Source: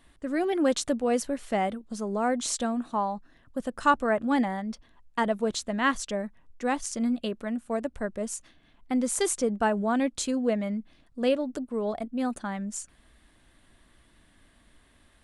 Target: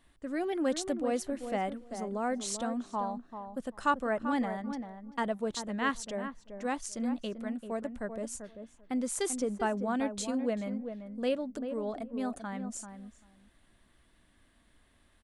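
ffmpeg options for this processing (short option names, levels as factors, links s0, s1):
-filter_complex "[0:a]asplit=2[s0][s1];[s1]adelay=390,lowpass=f=1100:p=1,volume=0.422,asplit=2[s2][s3];[s3]adelay=390,lowpass=f=1100:p=1,volume=0.16,asplit=2[s4][s5];[s5]adelay=390,lowpass=f=1100:p=1,volume=0.16[s6];[s0][s2][s4][s6]amix=inputs=4:normalize=0,volume=0.501"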